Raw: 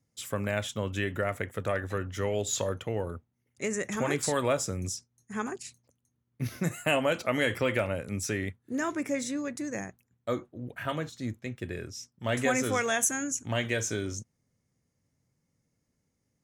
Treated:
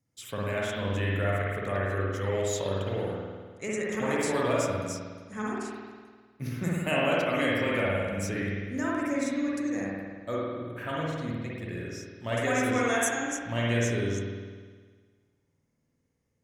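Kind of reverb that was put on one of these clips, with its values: spring tank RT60 1.6 s, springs 51 ms, chirp 65 ms, DRR -5 dB; trim -4.5 dB

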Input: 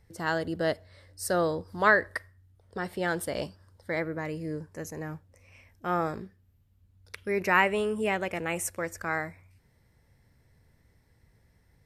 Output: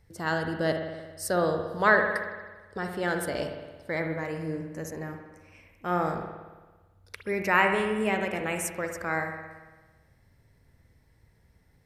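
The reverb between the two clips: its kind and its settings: spring tank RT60 1.3 s, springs 56 ms, chirp 25 ms, DRR 4.5 dB

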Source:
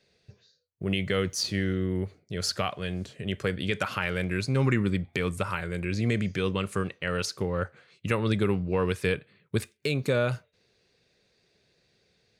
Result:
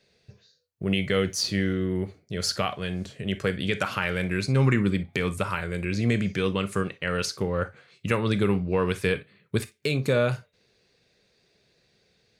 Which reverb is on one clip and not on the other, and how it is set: gated-style reverb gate 80 ms flat, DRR 11.5 dB; trim +2 dB

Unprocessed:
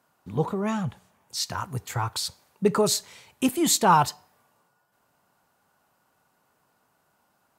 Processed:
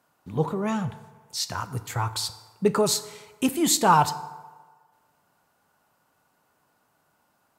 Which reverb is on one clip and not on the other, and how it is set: FDN reverb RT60 1.4 s, low-frequency decay 0.75×, high-frequency decay 0.55×, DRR 12.5 dB

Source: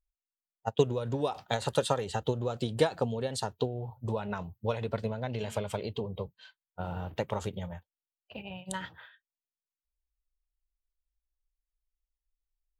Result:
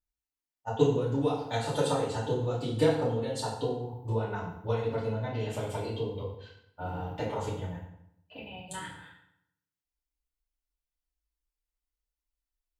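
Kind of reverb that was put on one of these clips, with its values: FDN reverb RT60 0.75 s, low-frequency decay 1.2×, high-frequency decay 0.8×, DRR -9 dB; trim -9.5 dB

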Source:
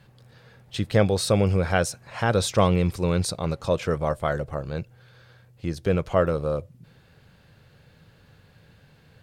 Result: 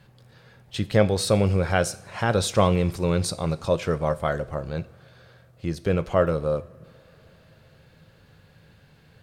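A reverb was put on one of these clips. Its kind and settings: two-slope reverb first 0.47 s, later 4.6 s, from -21 dB, DRR 13 dB

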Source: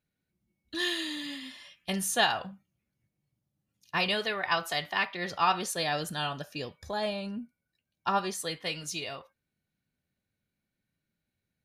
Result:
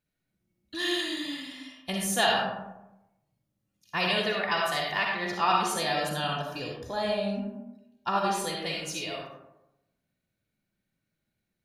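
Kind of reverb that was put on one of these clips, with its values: algorithmic reverb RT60 0.94 s, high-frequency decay 0.4×, pre-delay 20 ms, DRR -1 dB; trim -1 dB

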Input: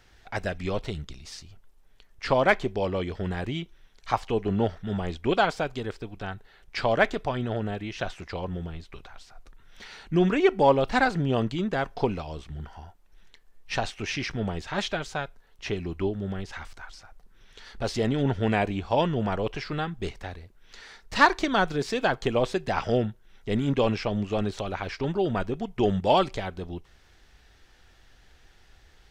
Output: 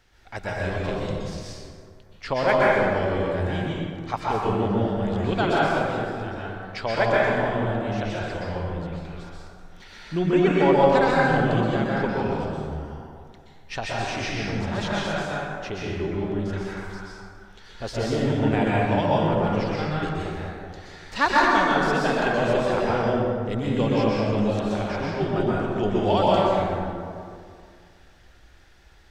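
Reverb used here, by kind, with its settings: plate-style reverb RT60 2.2 s, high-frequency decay 0.45×, pre-delay 110 ms, DRR -6 dB; trim -3.5 dB

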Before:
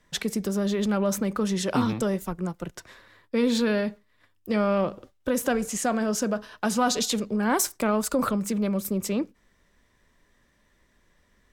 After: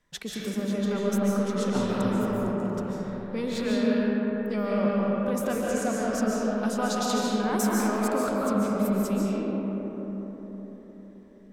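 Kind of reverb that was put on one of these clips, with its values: algorithmic reverb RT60 4.8 s, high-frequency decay 0.3×, pre-delay 105 ms, DRR -5.5 dB; trim -8 dB

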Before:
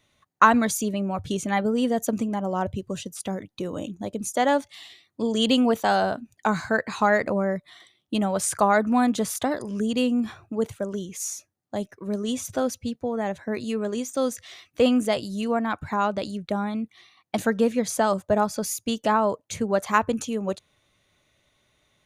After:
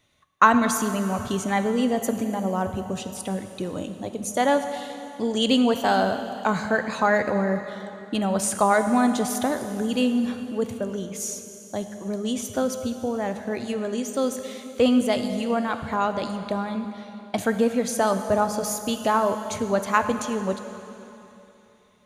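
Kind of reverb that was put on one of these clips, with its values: plate-style reverb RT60 3.1 s, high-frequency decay 0.95×, DRR 7.5 dB

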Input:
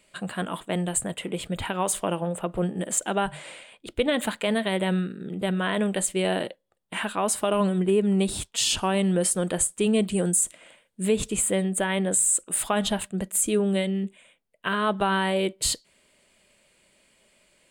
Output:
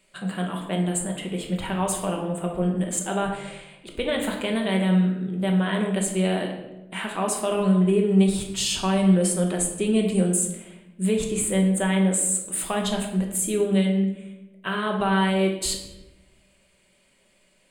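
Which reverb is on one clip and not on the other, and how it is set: simulated room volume 390 m³, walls mixed, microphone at 1.1 m; trim -3 dB

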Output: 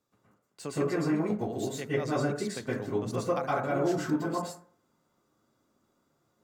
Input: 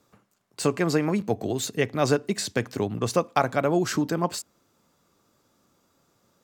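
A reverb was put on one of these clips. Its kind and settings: plate-style reverb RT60 0.51 s, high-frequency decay 0.35×, pre-delay 105 ms, DRR -8 dB; trim -15 dB

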